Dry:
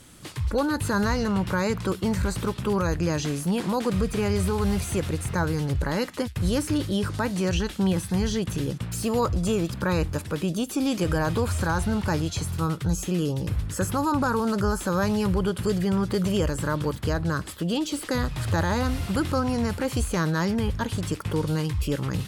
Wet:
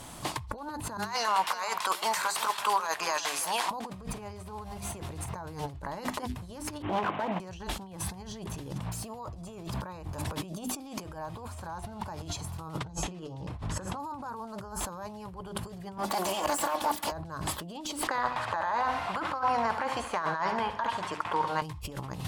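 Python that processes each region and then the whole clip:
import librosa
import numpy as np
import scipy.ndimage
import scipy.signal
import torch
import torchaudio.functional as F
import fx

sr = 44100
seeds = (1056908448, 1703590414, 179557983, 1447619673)

y = fx.chain(x, sr, fx.highpass(hz=1200.0, slope=12),
    fx.over_compress(threshold_db=-37.0, ratio=-0.5),
    fx.echo_single(ms=346, db=-13.0), at=(0.97, 3.71))
y = fx.chain(y, sr, fx.cvsd(bps=16000),
    fx.clip_hard(threshold_db=-26.5),
    fx.highpass(hz=260.0, slope=12), at=(6.82, 7.4))
y = fx.chain(y, sr, fx.air_absorb(metres=69.0),
    fx.hum_notches(base_hz=50, count=8),
    fx.room_flutter(wall_m=10.0, rt60_s=0.26), at=(12.79, 14.0))
y = fx.chain(y, sr, fx.lower_of_two(delay_ms=3.5),
    fx.highpass(hz=1000.0, slope=6),
    fx.high_shelf(hz=11000.0, db=8.0), at=(15.98, 17.12))
y = fx.chain(y, sr, fx.bandpass_q(hz=1500.0, q=1.1),
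    fx.echo_feedback(ms=69, feedback_pct=54, wet_db=-12.0), at=(18.07, 21.62))
y = fx.hum_notches(y, sr, base_hz=50, count=8)
y = fx.over_compress(y, sr, threshold_db=-36.0, ratio=-1.0)
y = fx.band_shelf(y, sr, hz=830.0, db=10.5, octaves=1.0)
y = F.gain(torch.from_numpy(y), -2.5).numpy()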